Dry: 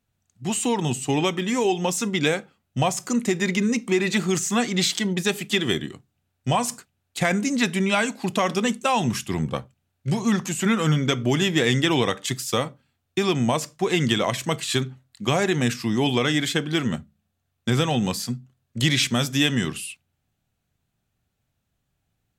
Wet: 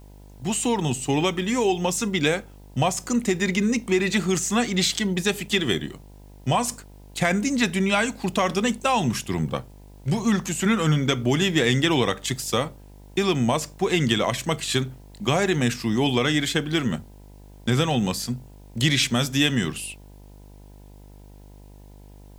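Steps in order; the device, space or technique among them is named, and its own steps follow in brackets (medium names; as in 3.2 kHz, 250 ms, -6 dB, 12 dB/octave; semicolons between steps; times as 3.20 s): video cassette with head-switching buzz (mains buzz 50 Hz, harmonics 20, -46 dBFS -6 dB/octave; white noise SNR 38 dB)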